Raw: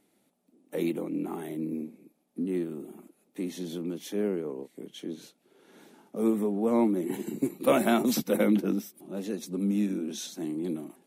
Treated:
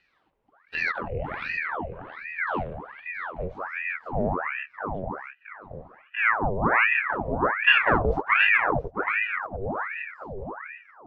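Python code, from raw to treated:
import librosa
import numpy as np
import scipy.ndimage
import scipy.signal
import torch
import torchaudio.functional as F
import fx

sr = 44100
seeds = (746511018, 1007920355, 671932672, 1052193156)

p1 = fx.fade_out_tail(x, sr, length_s=2.38)
p2 = fx.filter_sweep_lowpass(p1, sr, from_hz=2200.0, to_hz=700.0, start_s=2.68, end_s=3.81, q=1.5)
p3 = p2 + fx.echo_filtered(p2, sr, ms=674, feedback_pct=20, hz=1900.0, wet_db=-6.0, dry=0)
p4 = fx.ring_lfo(p3, sr, carrier_hz=1200.0, swing_pct=85, hz=1.3)
y = p4 * librosa.db_to_amplitude(4.0)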